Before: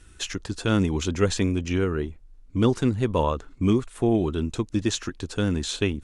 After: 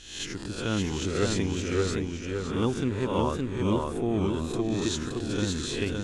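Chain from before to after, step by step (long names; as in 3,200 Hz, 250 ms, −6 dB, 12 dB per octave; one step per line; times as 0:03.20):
peak hold with a rise ahead of every peak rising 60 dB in 0.68 s
feedback echo with a swinging delay time 567 ms, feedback 35%, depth 80 cents, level −3 dB
level −7 dB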